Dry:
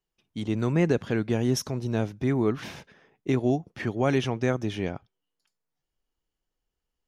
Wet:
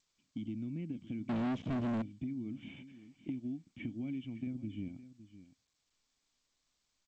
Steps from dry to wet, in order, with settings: bell 430 Hz -13.5 dB 0.5 oct; 2.68–3.28 overdrive pedal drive 14 dB, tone 2100 Hz, clips at -29 dBFS; vocal tract filter i; 4.47–4.89 tilt -2 dB/oct; compressor 8:1, threshold -42 dBFS, peak gain reduction 15.5 dB; echo 0.561 s -15 dB; 1.29–2.02 sample leveller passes 5; gain +4.5 dB; G.722 64 kbps 16000 Hz

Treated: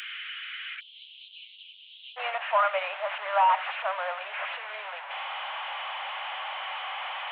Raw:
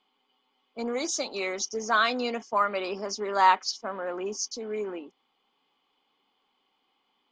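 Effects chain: delta modulation 16 kbps, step -32.5 dBFS; steep high-pass 1400 Hz 72 dB/oct, from 0.79 s 3000 Hz, from 2.16 s 580 Hz; gain +5.5 dB

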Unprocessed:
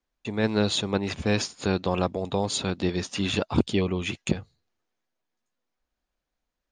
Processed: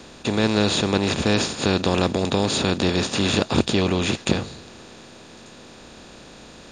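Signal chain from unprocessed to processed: per-bin compression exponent 0.4

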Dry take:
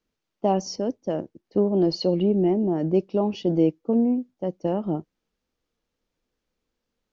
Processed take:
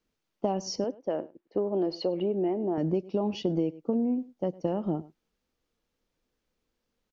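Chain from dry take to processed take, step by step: 0.84–2.78 tone controls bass -14 dB, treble -14 dB; echo 0.103 s -23 dB; compressor 6:1, threshold -24 dBFS, peak gain reduction 9.5 dB

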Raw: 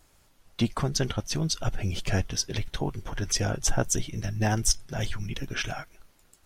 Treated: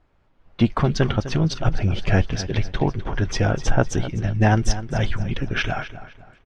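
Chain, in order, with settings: LPF 2900 Hz 12 dB/oct; AGC gain up to 9 dB; on a send: feedback echo 0.254 s, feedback 36%, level -13 dB; on the sum: mismatched tape noise reduction decoder only

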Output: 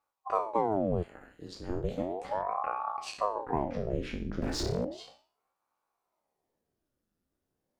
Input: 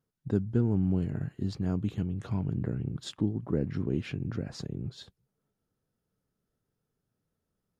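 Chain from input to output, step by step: spectral trails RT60 0.42 s; 1.02–1.68 HPF 820 Hz -> 290 Hz 12 dB/oct; 2.42–2.89 resonant high shelf 1800 Hz -7 dB, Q 3; 4.42–4.85 sample leveller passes 3; ring modulator with a swept carrier 540 Hz, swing 85%, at 0.35 Hz

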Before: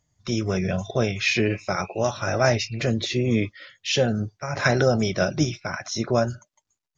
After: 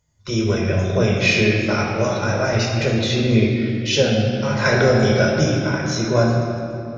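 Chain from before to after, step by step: 2.03–2.53 compressor, threshold -21 dBFS, peak gain reduction 7 dB; reverb RT60 2.7 s, pre-delay 14 ms, DRR -2 dB

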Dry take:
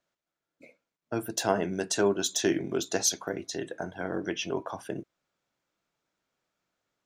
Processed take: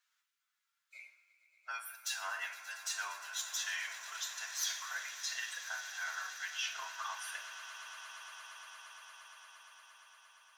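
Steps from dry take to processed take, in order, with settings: tracing distortion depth 0.023 ms; inverse Chebyshev high-pass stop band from 360 Hz, stop band 60 dB; reverse; compressor 6:1, threshold -42 dBFS, peak gain reduction 19 dB; reverse; time stretch by phase-locked vocoder 1.5×; swelling echo 0.116 s, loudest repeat 8, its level -17.5 dB; on a send at -6 dB: reverb, pre-delay 3 ms; on the sum: gain +4.5 dB

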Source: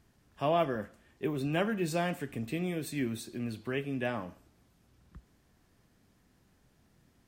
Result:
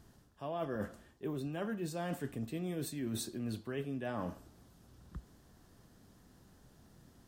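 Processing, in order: bell 2300 Hz -8.5 dB 0.6 oct; reverse; compressor 16:1, threshold -40 dBFS, peak gain reduction 17.5 dB; reverse; gain +5.5 dB

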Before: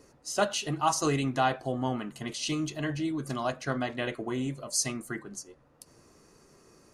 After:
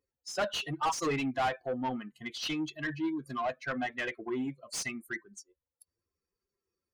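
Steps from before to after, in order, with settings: per-bin expansion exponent 2; overdrive pedal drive 25 dB, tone 2800 Hz, clips at -14 dBFS; gain -7.5 dB

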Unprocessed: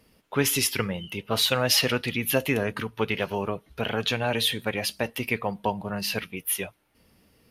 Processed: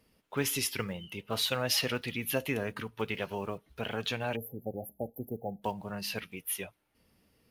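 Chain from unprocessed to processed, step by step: block floating point 7-bit; spectral delete 4.36–5.63, 840–11000 Hz; gain -7.5 dB

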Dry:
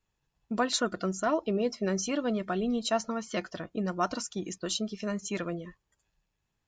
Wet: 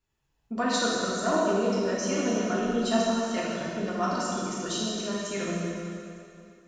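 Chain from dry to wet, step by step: plate-style reverb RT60 2.6 s, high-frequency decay 0.9×, DRR -6.5 dB; gain -3.5 dB

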